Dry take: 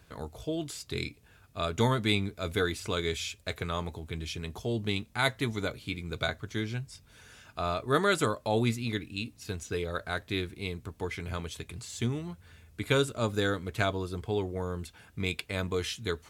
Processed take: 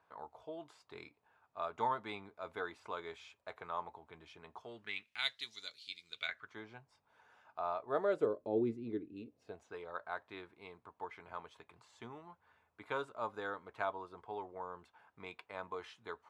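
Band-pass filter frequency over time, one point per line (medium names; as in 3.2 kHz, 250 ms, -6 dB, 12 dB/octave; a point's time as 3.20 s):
band-pass filter, Q 2.9
4.51 s 920 Hz
5.46 s 4.4 kHz
6.07 s 4.4 kHz
6.58 s 880 Hz
7.78 s 880 Hz
8.42 s 360 Hz
9.13 s 360 Hz
9.75 s 940 Hz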